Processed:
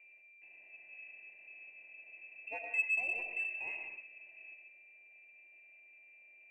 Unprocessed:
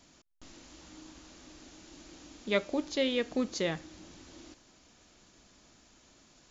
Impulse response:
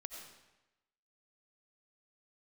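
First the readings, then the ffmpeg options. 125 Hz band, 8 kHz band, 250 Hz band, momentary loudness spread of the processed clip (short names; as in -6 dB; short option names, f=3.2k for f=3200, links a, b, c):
under -30 dB, n/a, under -30 dB, 22 LU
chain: -filter_complex "[0:a]asplit=3[a][b][c];[a]bandpass=f=300:t=q:w=8,volume=0dB[d];[b]bandpass=f=870:t=q:w=8,volume=-6dB[e];[c]bandpass=f=2.24k:t=q:w=8,volume=-9dB[f];[d][e][f]amix=inputs=3:normalize=0,aeval=exprs='val(0)+0.001*sin(2*PI*530*n/s)':c=same,lowpass=f=2.5k:t=q:w=0.5098,lowpass=f=2.5k:t=q:w=0.6013,lowpass=f=2.5k:t=q:w=0.9,lowpass=f=2.5k:t=q:w=2.563,afreqshift=-2900,equalizer=f=350:w=5.4:g=8[g];[1:a]atrim=start_sample=2205,afade=t=out:st=0.36:d=0.01,atrim=end_sample=16317[h];[g][h]afir=irnorm=-1:irlink=0,asplit=2[i][j];[j]asoftclip=type=tanh:threshold=-39dB,volume=-9dB[k];[i][k]amix=inputs=2:normalize=0,volume=5dB"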